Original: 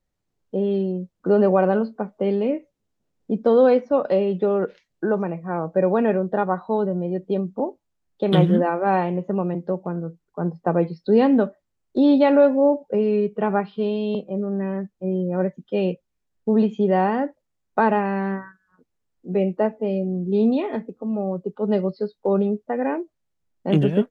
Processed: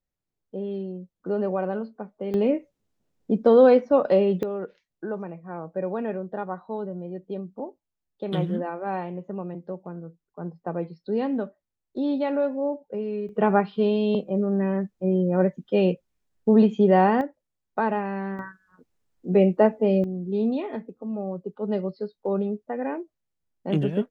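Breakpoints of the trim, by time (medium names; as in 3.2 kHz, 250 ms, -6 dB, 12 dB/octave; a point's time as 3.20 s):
-9 dB
from 2.34 s +0.5 dB
from 4.43 s -9.5 dB
from 13.29 s +1.5 dB
from 17.21 s -6 dB
from 18.39 s +3 dB
from 20.04 s -5.5 dB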